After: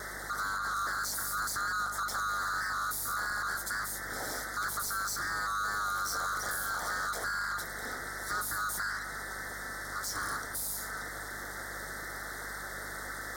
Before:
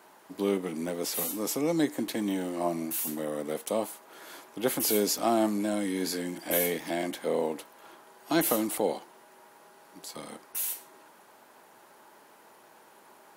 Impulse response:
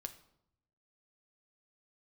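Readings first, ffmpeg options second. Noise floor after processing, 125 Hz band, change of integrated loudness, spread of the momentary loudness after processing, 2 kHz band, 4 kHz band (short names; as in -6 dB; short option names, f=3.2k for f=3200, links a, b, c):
-41 dBFS, -6.0 dB, -4.0 dB, 7 LU, +9.0 dB, -1.5 dB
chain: -filter_complex "[0:a]afftfilt=real='real(if(lt(b,960),b+48*(1-2*mod(floor(b/48),2)),b),0)':imag='imag(if(lt(b,960),b+48*(1-2*mod(floor(b/48),2)),b),0)':win_size=2048:overlap=0.75,lowshelf=f=180:g=3,acompressor=threshold=-34dB:ratio=12,asplit=2[a][b];[b]highpass=f=720:p=1,volume=31dB,asoftclip=type=tanh:threshold=-23.5dB[c];[a][c]amix=inputs=2:normalize=0,lowpass=f=7.6k:p=1,volume=-6dB,aeval=exprs='val(0)*sin(2*PI*100*n/s)':c=same,aeval=exprs='val(0)+0.00282*(sin(2*PI*50*n/s)+sin(2*PI*2*50*n/s)/2+sin(2*PI*3*50*n/s)/3+sin(2*PI*4*50*n/s)/4+sin(2*PI*5*50*n/s)/5)':c=same,asuperstop=centerf=2700:order=4:qfactor=1.1"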